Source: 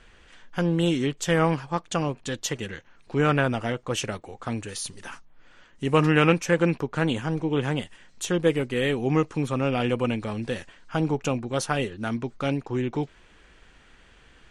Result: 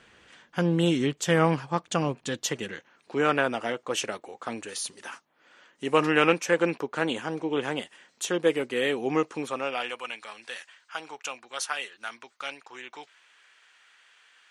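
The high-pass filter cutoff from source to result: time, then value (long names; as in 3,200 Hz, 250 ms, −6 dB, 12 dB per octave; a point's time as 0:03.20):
0:02.15 120 Hz
0:03.24 320 Hz
0:09.32 320 Hz
0:10.03 1,200 Hz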